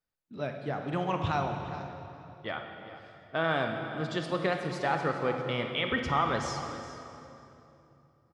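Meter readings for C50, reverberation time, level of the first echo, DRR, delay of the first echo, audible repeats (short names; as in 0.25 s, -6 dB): 4.5 dB, 2.9 s, -15.0 dB, 3.5 dB, 0.407 s, 1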